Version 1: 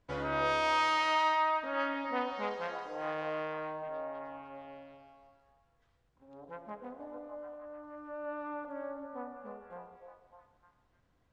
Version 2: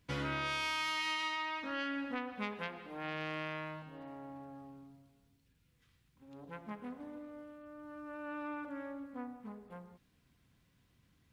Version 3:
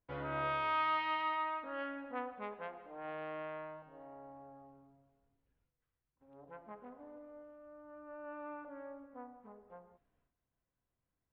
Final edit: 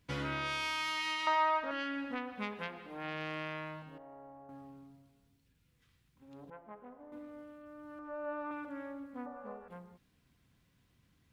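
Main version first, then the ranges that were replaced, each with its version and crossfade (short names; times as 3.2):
2
1.27–1.71 from 1
3.98–4.49 from 3
6.5–7.12 from 3
7.99–8.51 from 1
9.26–9.68 from 1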